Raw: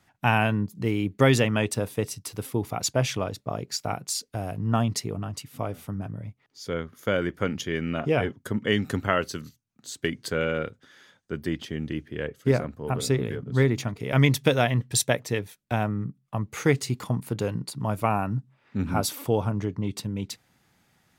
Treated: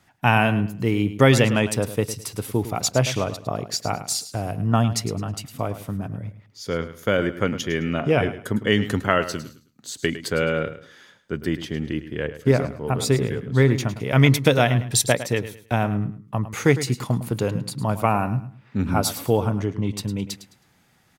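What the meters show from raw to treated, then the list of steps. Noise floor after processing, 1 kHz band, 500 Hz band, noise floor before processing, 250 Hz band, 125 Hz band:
−60 dBFS, +4.0 dB, +4.0 dB, −67 dBFS, +4.5 dB, +4.5 dB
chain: repeating echo 106 ms, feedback 27%, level −13 dB
level +4 dB

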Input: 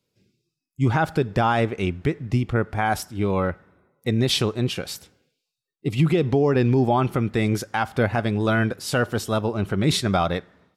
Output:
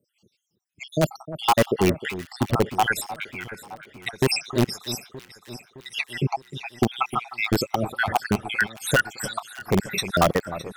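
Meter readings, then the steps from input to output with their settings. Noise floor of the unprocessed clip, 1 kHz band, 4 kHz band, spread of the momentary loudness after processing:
−82 dBFS, 0.0 dB, −0.5 dB, 15 LU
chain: time-frequency cells dropped at random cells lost 78%
high-pass filter 180 Hz 6 dB per octave
in parallel at −3.5 dB: wrap-around overflow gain 18.5 dB
on the sum: delay that swaps between a low-pass and a high-pass 307 ms, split 1,400 Hz, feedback 74%, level −13.5 dB
level +4.5 dB

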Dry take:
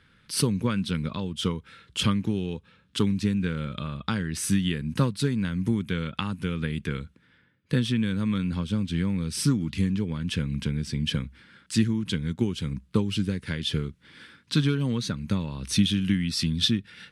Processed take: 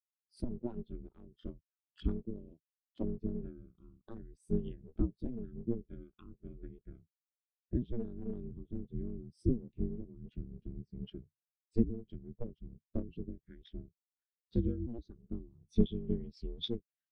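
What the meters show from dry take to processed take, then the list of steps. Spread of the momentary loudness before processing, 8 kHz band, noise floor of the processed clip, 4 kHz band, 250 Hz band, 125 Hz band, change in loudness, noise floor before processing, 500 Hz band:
7 LU, below −35 dB, below −85 dBFS, below −20 dB, −12.5 dB, −15.0 dB, −12.5 dB, −62 dBFS, −8.0 dB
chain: sub-harmonics by changed cycles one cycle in 2, inverted
ring modulation 120 Hz
every bin expanded away from the loudest bin 2.5 to 1
level −2.5 dB

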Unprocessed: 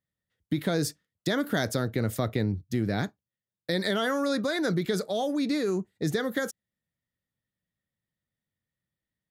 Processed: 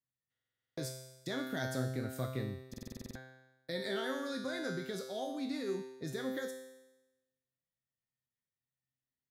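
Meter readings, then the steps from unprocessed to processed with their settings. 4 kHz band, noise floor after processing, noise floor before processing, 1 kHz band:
−10.0 dB, below −85 dBFS, below −85 dBFS, −11.0 dB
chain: tuned comb filter 130 Hz, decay 1 s, harmonics all, mix 90%
buffer that repeats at 0:00.31/0:02.69, samples 2,048, times 9
level +4 dB

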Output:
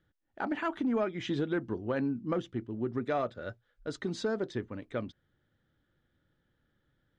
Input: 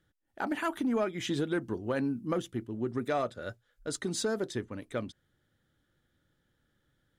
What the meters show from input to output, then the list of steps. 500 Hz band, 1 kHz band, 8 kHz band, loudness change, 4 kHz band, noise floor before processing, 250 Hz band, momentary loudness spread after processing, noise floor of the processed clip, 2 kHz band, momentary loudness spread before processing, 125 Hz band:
−0.5 dB, −1.0 dB, −13.0 dB, −0.5 dB, −4.5 dB, −77 dBFS, 0.0 dB, 8 LU, −77 dBFS, −1.5 dB, 8 LU, 0.0 dB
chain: high-frequency loss of the air 160 metres

